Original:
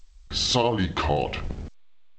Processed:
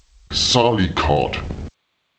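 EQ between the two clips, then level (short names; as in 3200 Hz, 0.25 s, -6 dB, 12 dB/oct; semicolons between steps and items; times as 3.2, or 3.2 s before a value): HPF 53 Hz; +7.0 dB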